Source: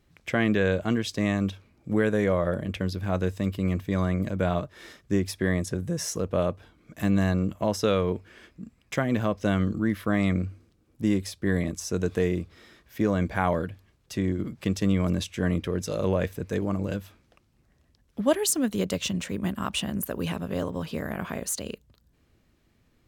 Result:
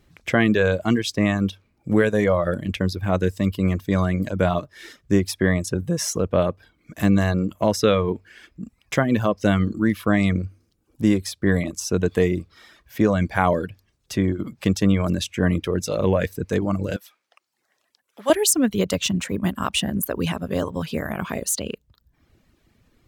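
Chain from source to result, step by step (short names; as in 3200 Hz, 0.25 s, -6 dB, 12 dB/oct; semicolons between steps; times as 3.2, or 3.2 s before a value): reverb removal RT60 0.74 s; 16.96–18.3 HPF 730 Hz 12 dB/oct; gain +6.5 dB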